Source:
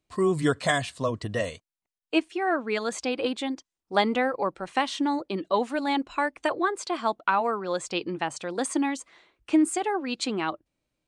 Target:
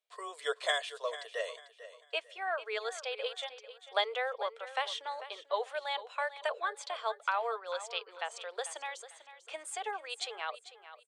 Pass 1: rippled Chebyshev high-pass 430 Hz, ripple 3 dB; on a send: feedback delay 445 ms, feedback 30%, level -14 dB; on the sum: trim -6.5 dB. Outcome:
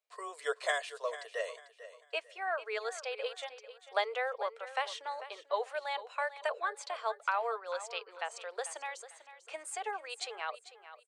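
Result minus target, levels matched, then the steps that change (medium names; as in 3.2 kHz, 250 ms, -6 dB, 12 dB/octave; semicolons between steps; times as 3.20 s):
4 kHz band -4.5 dB
add after rippled Chebyshev high-pass: peaking EQ 3.4 kHz +8.5 dB 0.25 oct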